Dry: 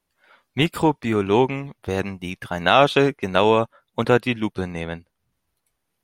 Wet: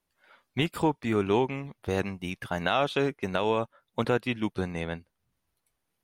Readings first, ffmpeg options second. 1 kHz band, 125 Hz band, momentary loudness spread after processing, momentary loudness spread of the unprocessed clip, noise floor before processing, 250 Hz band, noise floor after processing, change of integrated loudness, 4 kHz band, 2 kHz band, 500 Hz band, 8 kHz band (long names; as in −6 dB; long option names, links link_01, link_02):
−9.0 dB, −6.5 dB, 10 LU, 14 LU, −77 dBFS, −7.0 dB, −81 dBFS, −8.5 dB, −9.0 dB, −8.0 dB, −8.0 dB, can't be measured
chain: -af "alimiter=limit=-10dB:level=0:latency=1:release=421,volume=-4dB"